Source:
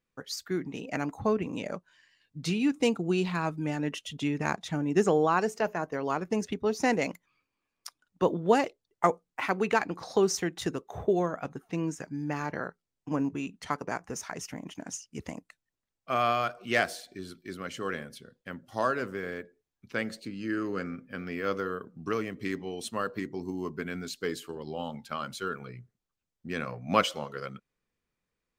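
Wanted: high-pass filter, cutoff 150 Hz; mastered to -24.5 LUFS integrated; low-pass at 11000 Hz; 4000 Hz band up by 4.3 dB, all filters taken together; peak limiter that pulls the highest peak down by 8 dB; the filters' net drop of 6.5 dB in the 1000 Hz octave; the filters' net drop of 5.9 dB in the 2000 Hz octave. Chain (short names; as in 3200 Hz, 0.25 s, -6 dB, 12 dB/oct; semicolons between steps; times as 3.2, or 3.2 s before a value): HPF 150 Hz; LPF 11000 Hz; bell 1000 Hz -7.5 dB; bell 2000 Hz -7.5 dB; bell 4000 Hz +9 dB; gain +9.5 dB; limiter -9.5 dBFS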